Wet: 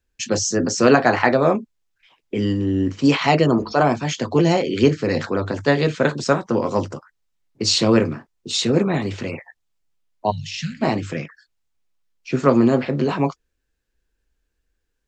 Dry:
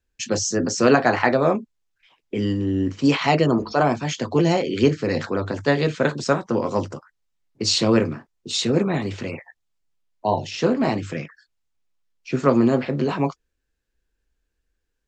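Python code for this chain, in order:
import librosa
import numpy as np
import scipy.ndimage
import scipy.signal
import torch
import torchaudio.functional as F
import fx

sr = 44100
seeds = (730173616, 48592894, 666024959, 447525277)

y = fx.cheby2_bandstop(x, sr, low_hz=300.0, high_hz=1100.0, order=4, stop_db=40, at=(10.3, 10.81), fade=0.02)
y = y * 10.0 ** (2.0 / 20.0)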